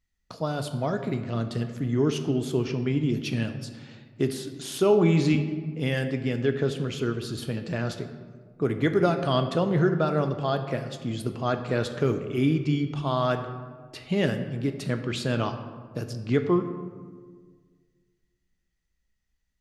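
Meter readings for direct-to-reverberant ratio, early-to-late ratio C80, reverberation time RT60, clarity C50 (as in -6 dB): 7.0 dB, 10.5 dB, 1.6 s, 9.5 dB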